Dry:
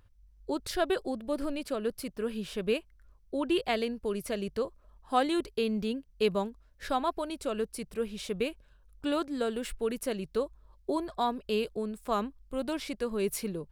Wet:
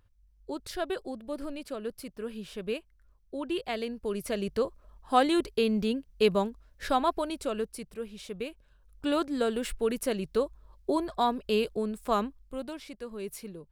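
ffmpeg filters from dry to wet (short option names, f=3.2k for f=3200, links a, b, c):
-af "volume=11.5dB,afade=t=in:st=3.71:d=0.91:silence=0.421697,afade=t=out:st=7.16:d=0.83:silence=0.375837,afade=t=in:st=8.49:d=0.75:silence=0.398107,afade=t=out:st=12.12:d=0.64:silence=0.298538"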